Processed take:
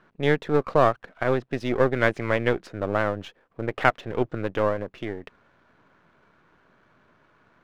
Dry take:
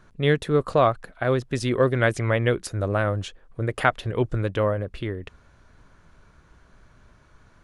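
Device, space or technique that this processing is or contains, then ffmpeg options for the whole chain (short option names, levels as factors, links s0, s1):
crystal radio: -af "highpass=200,lowpass=2800,aeval=exprs='if(lt(val(0),0),0.447*val(0),val(0))':c=same,volume=1.26"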